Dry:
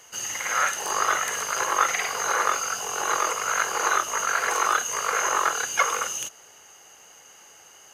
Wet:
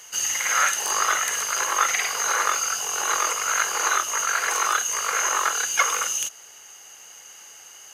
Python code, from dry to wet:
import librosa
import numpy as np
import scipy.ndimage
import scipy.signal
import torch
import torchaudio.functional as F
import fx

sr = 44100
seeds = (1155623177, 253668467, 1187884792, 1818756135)

y = fx.tilt_shelf(x, sr, db=-5.0, hz=1300.0)
y = fx.rider(y, sr, range_db=10, speed_s=2.0)